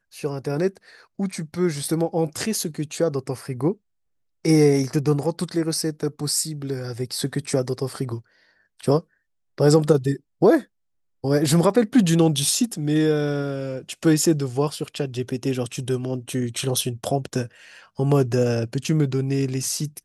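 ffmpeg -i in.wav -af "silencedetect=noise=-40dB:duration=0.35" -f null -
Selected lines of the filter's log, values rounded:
silence_start: 3.74
silence_end: 4.45 | silence_duration: 0.71
silence_start: 8.20
silence_end: 8.80 | silence_duration: 0.59
silence_start: 9.01
silence_end: 9.58 | silence_duration: 0.58
silence_start: 10.64
silence_end: 11.24 | silence_duration: 0.60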